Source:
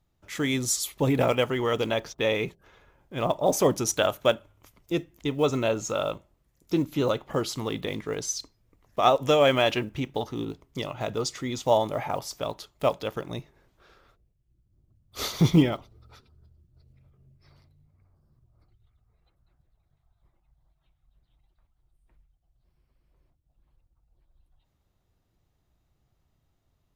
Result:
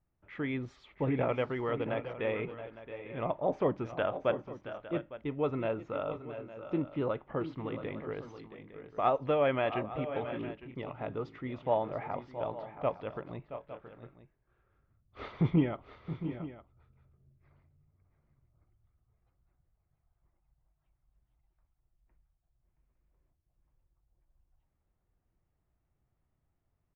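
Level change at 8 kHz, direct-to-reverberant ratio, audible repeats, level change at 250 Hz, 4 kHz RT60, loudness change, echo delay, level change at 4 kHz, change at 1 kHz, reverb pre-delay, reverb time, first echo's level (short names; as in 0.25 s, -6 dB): under -40 dB, none, 2, -7.0 dB, none, -8.0 dB, 0.673 s, -19.0 dB, -7.0 dB, none, none, -12.0 dB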